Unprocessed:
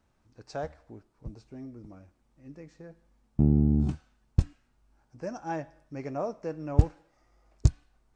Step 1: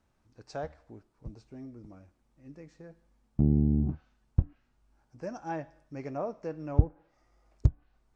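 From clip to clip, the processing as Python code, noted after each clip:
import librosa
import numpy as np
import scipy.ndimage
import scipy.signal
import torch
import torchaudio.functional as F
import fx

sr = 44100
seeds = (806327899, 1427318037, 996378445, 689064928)

y = fx.env_lowpass_down(x, sr, base_hz=720.0, full_db=-21.0)
y = F.gain(torch.from_numpy(y), -2.0).numpy()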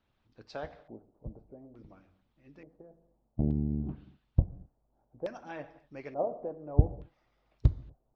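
y = fx.rev_gated(x, sr, seeds[0], gate_ms=280, shape='falling', drr_db=8.0)
y = fx.filter_lfo_lowpass(y, sr, shape='square', hz=0.57, low_hz=660.0, high_hz=3500.0, q=2.5)
y = fx.hpss(y, sr, part='harmonic', gain_db=-11)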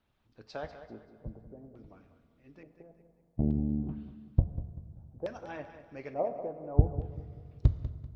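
y = fx.echo_feedback(x, sr, ms=194, feedback_pct=35, wet_db=-12.5)
y = fx.rev_fdn(y, sr, rt60_s=2.2, lf_ratio=1.4, hf_ratio=0.7, size_ms=14.0, drr_db=13.5)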